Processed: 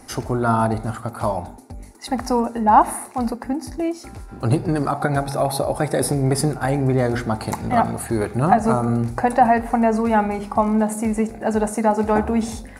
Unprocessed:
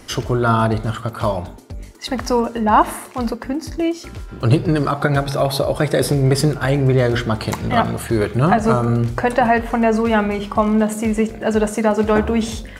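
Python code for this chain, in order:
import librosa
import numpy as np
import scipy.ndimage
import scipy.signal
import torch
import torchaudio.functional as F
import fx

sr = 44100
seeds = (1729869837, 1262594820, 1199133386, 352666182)

y = fx.graphic_eq_31(x, sr, hz=(250, 800, 3150, 10000), db=(6, 11, -12, 10))
y = y * librosa.db_to_amplitude(-5.0)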